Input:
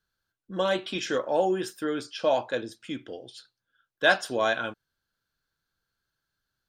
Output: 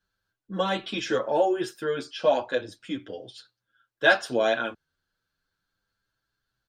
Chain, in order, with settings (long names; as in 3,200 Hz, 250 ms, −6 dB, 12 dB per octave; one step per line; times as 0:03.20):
high-shelf EQ 7,500 Hz −8.5 dB
barber-pole flanger 7.8 ms +0.36 Hz
level +5 dB